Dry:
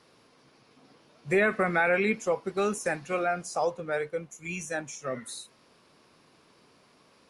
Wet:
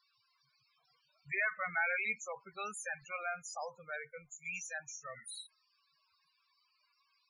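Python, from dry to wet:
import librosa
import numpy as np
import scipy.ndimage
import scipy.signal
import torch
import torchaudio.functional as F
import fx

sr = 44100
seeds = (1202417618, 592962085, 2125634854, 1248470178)

y = fx.tone_stack(x, sr, knobs='10-0-10')
y = fx.spec_topn(y, sr, count=16)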